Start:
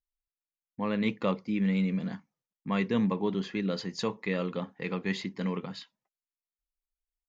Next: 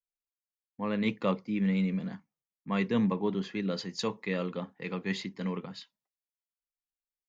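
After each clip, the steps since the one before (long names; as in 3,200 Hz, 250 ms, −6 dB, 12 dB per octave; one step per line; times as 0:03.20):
multiband upward and downward expander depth 40%
level −1 dB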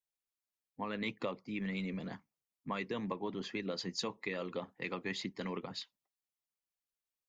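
harmonic and percussive parts rebalanced harmonic −12 dB
parametric band 1,500 Hz −3 dB 0.25 octaves
downward compressor 6 to 1, threshold −38 dBFS, peak gain reduction 12.5 dB
level +3.5 dB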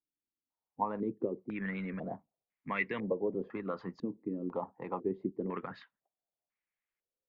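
low-pass on a step sequencer 2 Hz 290–2,100 Hz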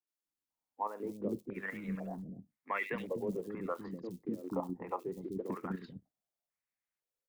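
output level in coarse steps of 9 dB
floating-point word with a short mantissa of 4 bits
three-band delay without the direct sound mids, highs, lows 70/250 ms, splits 330/2,800 Hz
level +3.5 dB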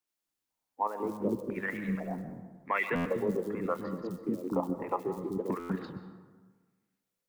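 dense smooth reverb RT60 1.4 s, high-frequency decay 0.5×, pre-delay 115 ms, DRR 10.5 dB
buffer that repeats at 0:02.95/0:05.59, samples 512, times 8
level +5.5 dB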